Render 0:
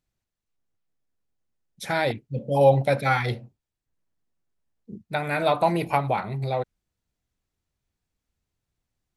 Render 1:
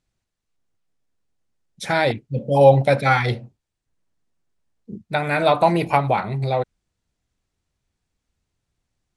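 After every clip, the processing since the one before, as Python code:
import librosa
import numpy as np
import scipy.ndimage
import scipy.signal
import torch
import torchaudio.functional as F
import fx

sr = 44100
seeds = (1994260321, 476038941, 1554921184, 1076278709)

y = scipy.signal.sosfilt(scipy.signal.butter(4, 10000.0, 'lowpass', fs=sr, output='sos'), x)
y = y * 10.0 ** (5.0 / 20.0)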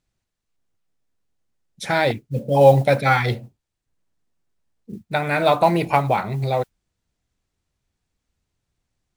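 y = fx.mod_noise(x, sr, seeds[0], snr_db=32)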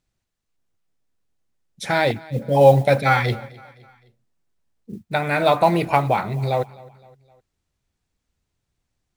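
y = fx.echo_feedback(x, sr, ms=258, feedback_pct=48, wet_db=-22.0)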